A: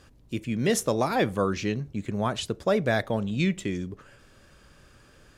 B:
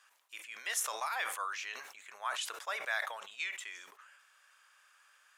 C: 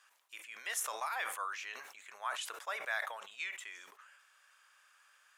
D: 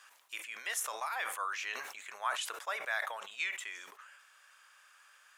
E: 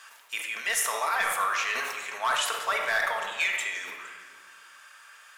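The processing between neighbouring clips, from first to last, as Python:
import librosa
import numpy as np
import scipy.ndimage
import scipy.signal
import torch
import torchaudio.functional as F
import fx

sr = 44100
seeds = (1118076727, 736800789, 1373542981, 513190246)

y1 = scipy.signal.sosfilt(scipy.signal.butter(4, 1000.0, 'highpass', fs=sr, output='sos'), x)
y1 = fx.peak_eq(y1, sr, hz=4500.0, db=-6.0, octaves=0.75)
y1 = fx.sustainer(y1, sr, db_per_s=56.0)
y1 = F.gain(torch.from_numpy(y1), -4.0).numpy()
y2 = fx.dynamic_eq(y1, sr, hz=4800.0, q=0.86, threshold_db=-52.0, ratio=4.0, max_db=-4)
y2 = F.gain(torch.from_numpy(y2), -1.0).numpy()
y3 = fx.rider(y2, sr, range_db=5, speed_s=0.5)
y3 = F.gain(torch.from_numpy(y3), 3.0).numpy()
y4 = y3 + 10.0 ** (-20.5 / 20.0) * np.pad(y3, (int(464 * sr / 1000.0), 0))[:len(y3)]
y4 = np.clip(10.0 ** (28.5 / 20.0) * y4, -1.0, 1.0) / 10.0 ** (28.5 / 20.0)
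y4 = fx.room_shoebox(y4, sr, seeds[0], volume_m3=1800.0, walls='mixed', distance_m=1.6)
y4 = F.gain(torch.from_numpy(y4), 8.0).numpy()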